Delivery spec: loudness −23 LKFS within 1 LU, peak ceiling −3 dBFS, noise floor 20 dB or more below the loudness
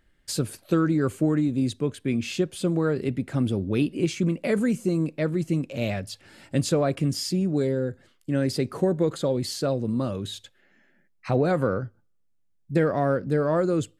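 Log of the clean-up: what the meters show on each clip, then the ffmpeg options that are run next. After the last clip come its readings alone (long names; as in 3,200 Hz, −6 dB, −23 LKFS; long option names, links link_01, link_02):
integrated loudness −25.5 LKFS; sample peak −9.5 dBFS; target loudness −23.0 LKFS
→ -af "volume=2.5dB"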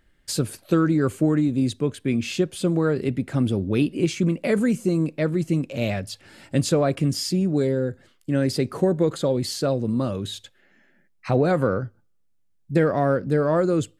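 integrated loudness −23.0 LKFS; sample peak −7.0 dBFS; background noise floor −63 dBFS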